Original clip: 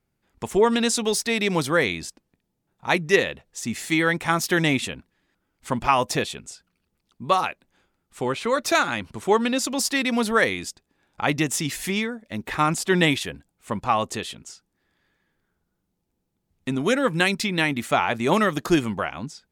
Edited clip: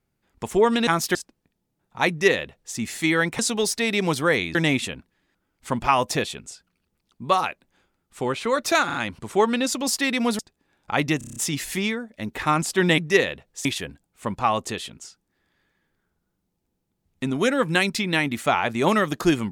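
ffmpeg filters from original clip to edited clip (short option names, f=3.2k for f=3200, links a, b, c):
-filter_complex "[0:a]asplit=16[a][b][c][d][e][f][g][h][i][j][k][l][m][n][o][p];[a]atrim=end=0.872[q];[b]atrim=start=4.268:end=4.552[r];[c]atrim=start=2.028:end=4.272[s];[d]atrim=start=0.868:end=2.032[t];[e]atrim=start=4.548:end=8.902[u];[f]atrim=start=8.858:end=8.902[v];[g]atrim=start=8.858:end=10.312[w];[h]atrim=start=10.688:end=11.512[x];[i]atrim=start=11.478:end=11.512[y];[j]atrim=start=11.478:end=11.512[z];[k]atrim=start=11.478:end=11.512[aa];[l]atrim=start=11.478:end=11.512[ab];[m]atrim=start=11.478:end=11.512[ac];[n]atrim=start=11.478:end=13.102[ad];[o]atrim=start=2.968:end=3.642[ae];[p]atrim=start=13.098[af];[q][r]acrossfade=d=0.004:c1=hsin:c2=hsin[ag];[ag][s]acrossfade=d=0.004:c1=hsin:c2=hsin[ah];[ah][t]acrossfade=d=0.004:c1=hsin:c2=hsin[ai];[ai][u]acrossfade=d=0.004:c1=hsin:c2=hsin[aj];[aj][v]acrossfade=d=0.004:c1=hsin:c2=hsin[ak];[ak][w]acrossfade=d=0.004:c1=hsin:c2=hsin[al];[al][x]acrossfade=d=0.004:c1=hsin:c2=hsin[am];[am][y]acrossfade=d=0.004:c1=hsin:c2=hsin[an];[an][z]acrossfade=d=0.004:c1=hsin:c2=hsin[ao];[ao][aa]acrossfade=d=0.004:c1=hsin:c2=hsin[ap];[ap][ab]acrossfade=d=0.004:c1=hsin:c2=hsin[aq];[aq][ac]acrossfade=d=0.004:c1=hsin:c2=hsin[ar];[ar][ad]acrossfade=d=0.004:c1=hsin:c2=hsin[as];[as][ae]acrossfade=d=0.004:c1=hsin:c2=hsin[at];[at][af]acrossfade=d=0.004:c1=hsin:c2=hsin"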